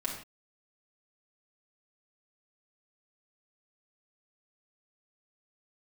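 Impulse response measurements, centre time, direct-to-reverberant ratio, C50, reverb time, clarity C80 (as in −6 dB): 30 ms, −4.0 dB, 4.5 dB, non-exponential decay, 8.5 dB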